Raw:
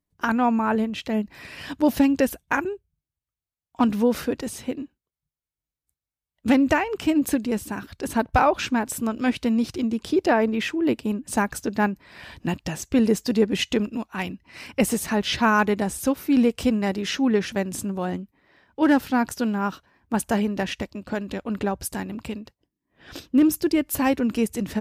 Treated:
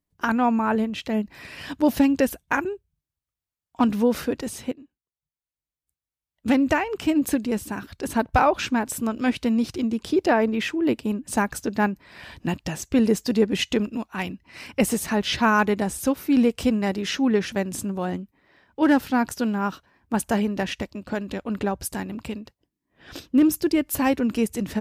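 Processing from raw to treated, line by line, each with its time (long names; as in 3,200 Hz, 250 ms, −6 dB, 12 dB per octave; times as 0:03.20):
0:04.72–0:07.76: fade in equal-power, from −15 dB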